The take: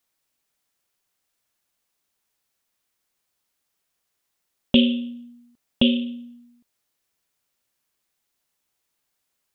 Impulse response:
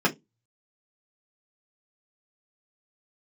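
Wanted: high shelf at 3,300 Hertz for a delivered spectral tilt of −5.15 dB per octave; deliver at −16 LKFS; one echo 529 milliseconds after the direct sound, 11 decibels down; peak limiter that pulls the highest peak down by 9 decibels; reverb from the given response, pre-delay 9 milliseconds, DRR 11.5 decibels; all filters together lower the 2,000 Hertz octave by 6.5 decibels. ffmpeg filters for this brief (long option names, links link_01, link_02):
-filter_complex "[0:a]equalizer=frequency=2000:width_type=o:gain=-6.5,highshelf=frequency=3300:gain=-7,alimiter=limit=-15dB:level=0:latency=1,aecho=1:1:529:0.282,asplit=2[link_01][link_02];[1:a]atrim=start_sample=2205,adelay=9[link_03];[link_02][link_03]afir=irnorm=-1:irlink=0,volume=-26dB[link_04];[link_01][link_04]amix=inputs=2:normalize=0,volume=9.5dB"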